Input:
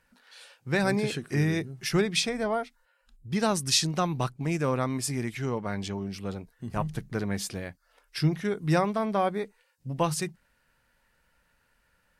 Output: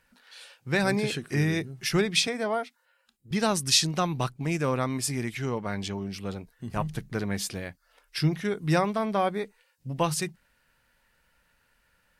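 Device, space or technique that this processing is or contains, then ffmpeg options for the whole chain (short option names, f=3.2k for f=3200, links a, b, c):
presence and air boost: -filter_complex "[0:a]equalizer=f=3.1k:t=o:w=1.7:g=3,highshelf=f=12k:g=5,asettb=1/sr,asplit=3[a][b][c];[a]atrim=end=2.274[d];[b]atrim=start=2.27:end=3.31,asetpts=PTS-STARTPTS,afade=t=in:d=0.004:c=qsin,afade=t=out:st=1.036:d=0.004:c=qsin,highpass=190[e];[c]atrim=start=3.306[f];[d][e]acrossfade=d=0.004:c1=hsin:c2=qsin[g];[g][f]acrossfade=d=0.004:c1=qsin:c2=hsin"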